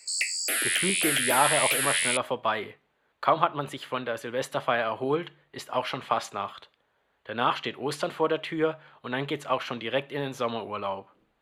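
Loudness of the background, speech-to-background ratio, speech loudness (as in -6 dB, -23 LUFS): -24.5 LUFS, -5.0 dB, -29.5 LUFS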